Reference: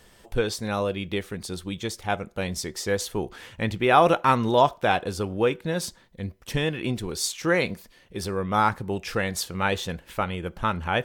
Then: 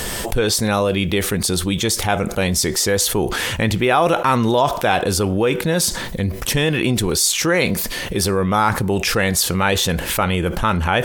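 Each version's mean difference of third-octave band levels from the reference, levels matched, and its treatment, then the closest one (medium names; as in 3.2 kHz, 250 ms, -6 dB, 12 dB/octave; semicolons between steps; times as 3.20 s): 6.5 dB: peaking EQ 12 kHz +7 dB 1.5 oct; level flattener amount 70%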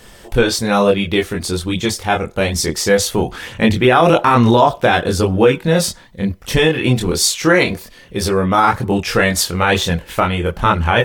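3.0 dB: chorus voices 2, 0.56 Hz, delay 24 ms, depth 1.7 ms; loudness maximiser +17 dB; trim -1 dB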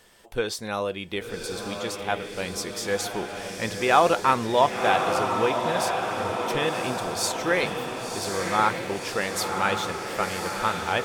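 9.5 dB: bass shelf 220 Hz -10.5 dB; on a send: echo that smears into a reverb 1063 ms, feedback 62%, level -4.5 dB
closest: second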